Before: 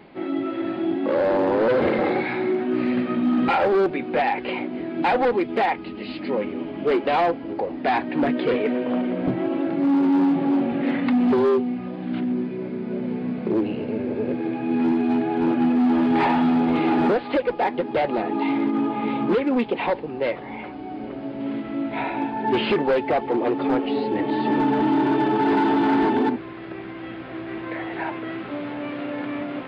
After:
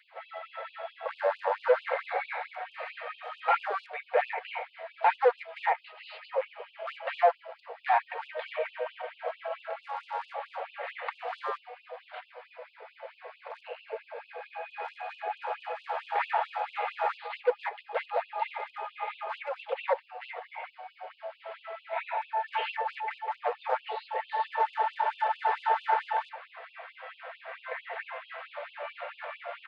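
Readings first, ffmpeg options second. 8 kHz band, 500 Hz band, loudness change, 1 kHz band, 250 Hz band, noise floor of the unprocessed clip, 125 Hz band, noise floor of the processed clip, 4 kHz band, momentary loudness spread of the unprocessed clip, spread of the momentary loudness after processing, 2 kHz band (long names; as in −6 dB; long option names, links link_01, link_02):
can't be measured, −10.5 dB, −10.0 dB, −5.0 dB, below −40 dB, −35 dBFS, below −40 dB, −60 dBFS, −9.0 dB, 11 LU, 17 LU, −5.5 dB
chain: -filter_complex "[0:a]highshelf=frequency=3000:gain=-11.5,bandreject=frequency=60:width_type=h:width=6,bandreject=frequency=120:width_type=h:width=6,bandreject=frequency=180:width_type=h:width=6,bandreject=frequency=240:width_type=h:width=6,bandreject=frequency=300:width_type=h:width=6,bandreject=frequency=360:width_type=h:width=6,bandreject=frequency=420:width_type=h:width=6,bandreject=frequency=480:width_type=h:width=6,aecho=1:1:4.4:0.34,acrossover=split=2700[link_01][link_02];[link_02]acompressor=threshold=-49dB:ratio=4:attack=1:release=60[link_03];[link_01][link_03]amix=inputs=2:normalize=0,afftfilt=real='re*gte(b*sr/1024,430*pow(2600/430,0.5+0.5*sin(2*PI*4.5*pts/sr)))':imag='im*gte(b*sr/1024,430*pow(2600/430,0.5+0.5*sin(2*PI*4.5*pts/sr)))':win_size=1024:overlap=0.75"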